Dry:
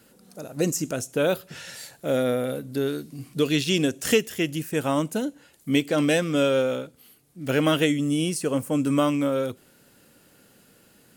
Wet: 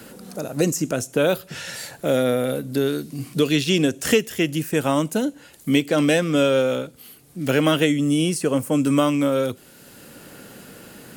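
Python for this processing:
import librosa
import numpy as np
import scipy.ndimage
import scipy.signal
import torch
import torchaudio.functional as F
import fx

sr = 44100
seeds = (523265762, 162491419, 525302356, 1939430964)

y = fx.band_squash(x, sr, depth_pct=40)
y = y * 10.0 ** (3.5 / 20.0)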